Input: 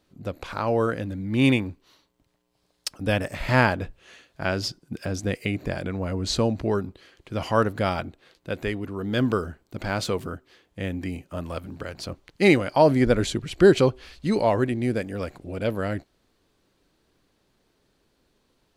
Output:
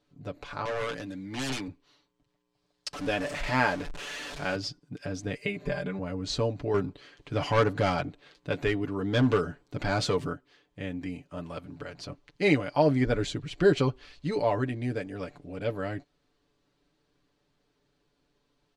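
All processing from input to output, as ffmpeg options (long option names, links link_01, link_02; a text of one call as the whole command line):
ffmpeg -i in.wav -filter_complex "[0:a]asettb=1/sr,asplit=3[link_01][link_02][link_03];[link_01]atrim=end=0.654[link_04];[link_02]atrim=start=0.65:end=1.68,asetpts=PTS-STARTPTS,afade=type=in:duration=0.004:curve=qsin,afade=type=out:start_time=1.026:duration=0.004:curve=qsin,highpass=150,highshelf=frequency=2200:gain=9.5,aeval=exprs='0.0841*(abs(mod(val(0)/0.0841+3,4)-2)-1)':channel_layout=same[link_05];[link_03]atrim=start=1.676[link_06];[link_04][link_05]acrossfade=duration=0.004:curve1=hsin:curve2=qsin[link_07];[link_07][link_06]acrossfade=duration=0.004:curve1=qsin:curve2=hsin,asettb=1/sr,asplit=3[link_08][link_09][link_10];[link_08]atrim=end=2.934[link_11];[link_09]atrim=start=2.93:end=4.56,asetpts=PTS-STARTPTS,afade=type=in:duration=0.004:curve=qsin,afade=type=out:start_time=1.626:duration=0.004:curve=qsin,aeval=exprs='val(0)+0.5*0.0422*sgn(val(0))':channel_layout=same,equalizer=frequency=110:width_type=o:width=0.83:gain=-11.5[link_12];[link_10]atrim=start=4.556[link_13];[link_11][link_12]acrossfade=duration=0.004:curve1=hsin:curve2=qsin[link_14];[link_14][link_13]acrossfade=duration=0.004:curve1=qsin:curve2=hsin,asettb=1/sr,asplit=3[link_15][link_16][link_17];[link_15]atrim=end=5.344[link_18];[link_16]atrim=start=5.34:end=5.99,asetpts=PTS-STARTPTS,afade=type=in:duration=0.004:curve=qsin,afade=type=out:start_time=0.646:duration=0.004:curve=qsin,bandreject=frequency=5600:width=12,aecho=1:1:5:0.95,atrim=end_sample=28665[link_19];[link_17]atrim=start=5.986[link_20];[link_18][link_19]acrossfade=duration=0.004:curve1=hsin:curve2=qsin[link_21];[link_21][link_20]acrossfade=duration=0.004:curve1=qsin:curve2=hsin,asettb=1/sr,asplit=3[link_22][link_23][link_24];[link_22]atrim=end=6.744[link_25];[link_23]atrim=start=6.74:end=10.33,asetpts=PTS-STARTPTS,afade=type=in:duration=0.004:curve=qsin,afade=type=out:start_time=3.586:duration=0.004:curve=qsin,acontrast=54,asoftclip=type=hard:threshold=-13.5dB[link_26];[link_24]atrim=start=10.326[link_27];[link_25][link_26]acrossfade=duration=0.004:curve1=hsin:curve2=qsin[link_28];[link_28][link_27]acrossfade=duration=0.004:curve1=qsin:curve2=hsin,lowpass=7000,aecho=1:1:6.9:0.7,volume=-7dB" out.wav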